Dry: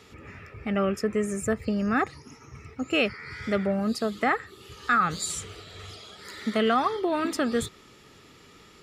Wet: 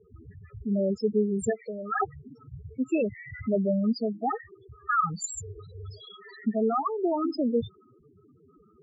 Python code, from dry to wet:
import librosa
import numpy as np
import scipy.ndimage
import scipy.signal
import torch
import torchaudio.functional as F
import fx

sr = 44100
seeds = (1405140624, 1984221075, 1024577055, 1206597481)

y = fx.highpass(x, sr, hz=560.0, slope=12, at=(1.5, 2.02))
y = fx.rider(y, sr, range_db=4, speed_s=0.5)
y = fx.spec_topn(y, sr, count=4)
y = F.gain(torch.from_numpy(y), 2.5).numpy()